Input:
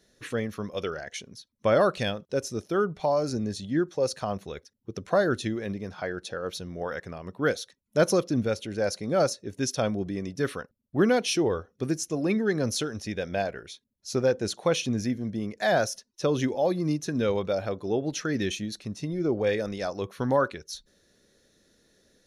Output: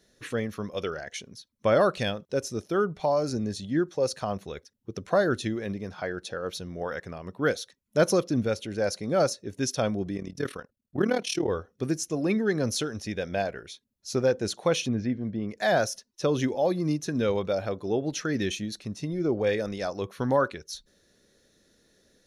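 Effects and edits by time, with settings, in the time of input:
10.17–11.49 s: AM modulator 38 Hz, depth 70%
14.88–15.49 s: Gaussian low-pass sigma 2.3 samples

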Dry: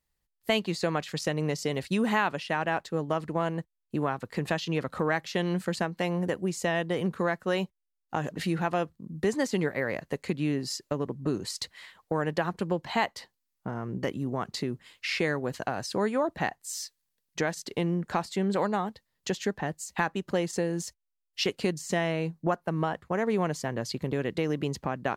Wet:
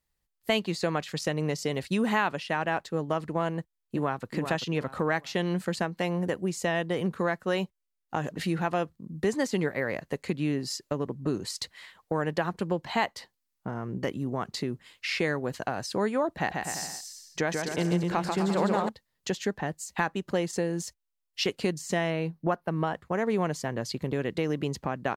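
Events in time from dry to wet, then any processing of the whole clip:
3.56–4.25 s: echo throw 390 ms, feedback 30%, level -7.5 dB
16.35–18.89 s: bouncing-ball echo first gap 140 ms, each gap 0.8×, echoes 6
22.10–22.87 s: peaking EQ 7.4 kHz -10 dB 0.49 oct

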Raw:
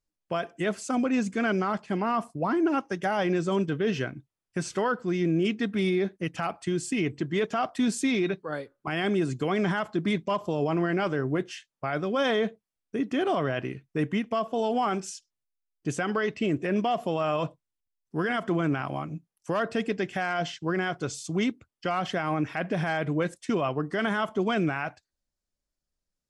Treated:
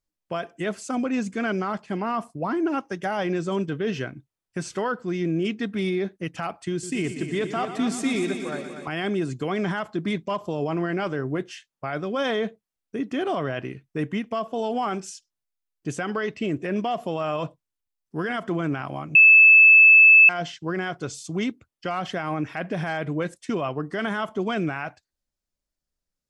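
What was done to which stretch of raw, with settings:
6.71–8.88 s: multi-head delay 120 ms, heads first and second, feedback 59%, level -11.5 dB
19.15–20.29 s: bleep 2.62 kHz -8.5 dBFS

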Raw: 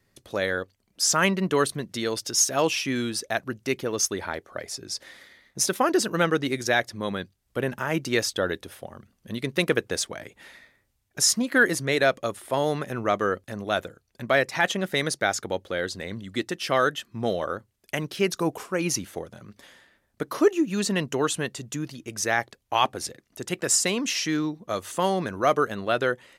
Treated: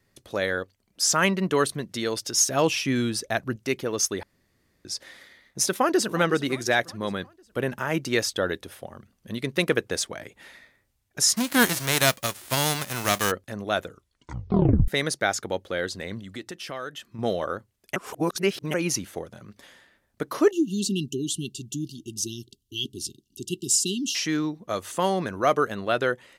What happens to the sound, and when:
2.35–3.56 s: bass shelf 180 Hz +8.5 dB
4.23–4.85 s: room tone
5.71–6.18 s: echo throw 360 ms, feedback 50%, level -16 dB
11.36–13.30 s: formants flattened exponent 0.3
13.85 s: tape stop 1.03 s
16.19–17.19 s: compression 2.5:1, threshold -36 dBFS
17.96–18.74 s: reverse
20.51–24.15 s: brick-wall FIR band-stop 410–2700 Hz

